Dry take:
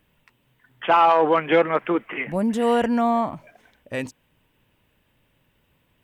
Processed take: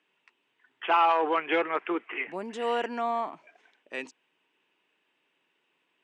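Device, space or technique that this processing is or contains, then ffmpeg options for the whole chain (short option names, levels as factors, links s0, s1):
television speaker: -af "highpass=f=460:p=1,highpass=f=200:w=0.5412,highpass=f=200:w=1.3066,equalizer=f=220:t=q:w=4:g=-7,equalizer=f=380:t=q:w=4:g=5,equalizer=f=560:t=q:w=4:g=-7,equalizer=f=2600:t=q:w=4:g=4,lowpass=f=7800:w=0.5412,lowpass=f=7800:w=1.3066,highshelf=f=5300:g=-4.5,volume=0.596"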